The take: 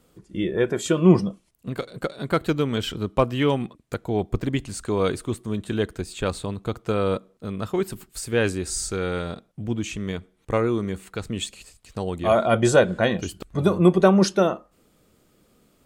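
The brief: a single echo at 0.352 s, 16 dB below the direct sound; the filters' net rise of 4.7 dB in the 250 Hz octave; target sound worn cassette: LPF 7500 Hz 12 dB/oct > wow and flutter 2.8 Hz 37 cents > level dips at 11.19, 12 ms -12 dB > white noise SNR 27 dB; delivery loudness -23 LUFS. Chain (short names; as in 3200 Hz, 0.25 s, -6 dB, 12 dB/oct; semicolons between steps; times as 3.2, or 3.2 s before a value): LPF 7500 Hz 12 dB/oct; bell 250 Hz +7 dB; echo 0.352 s -16 dB; wow and flutter 2.8 Hz 37 cents; level dips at 11.19, 12 ms -12 dB; white noise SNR 27 dB; gain -2 dB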